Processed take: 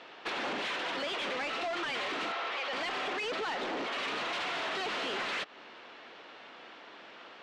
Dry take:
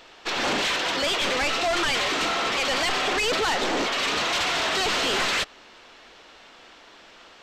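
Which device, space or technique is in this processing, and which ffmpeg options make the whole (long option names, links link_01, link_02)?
AM radio: -filter_complex "[0:a]highpass=170,lowpass=3200,acompressor=threshold=-32dB:ratio=5,asoftclip=type=tanh:threshold=-28dB,asettb=1/sr,asplit=3[link_01][link_02][link_03];[link_01]atrim=end=2.324[link_04];[link_02]atrim=start=2.32:end=2.73,asetpts=PTS-STARTPTS,afade=type=in:duration=0.004:curve=qsin,afade=type=out:start_time=0.406:duration=0.004:curve=qsin,acrossover=split=390 5800:gain=0.126 1 0.2[link_05][link_06][link_07];[link_05][link_06][link_07]amix=inputs=3:normalize=0[link_08];[link_03]atrim=start=2.726[link_09];[link_04][link_08]acrossfade=duration=0.004:curve1=hsin:curve2=qsin[link_10];[link_10][link_09]acrossfade=duration=0.004:curve1=qsin:curve2=hsin"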